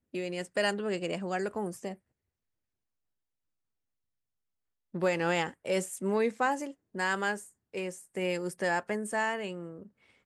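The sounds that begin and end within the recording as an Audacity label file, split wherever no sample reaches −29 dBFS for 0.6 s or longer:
4.950000	9.470000	sound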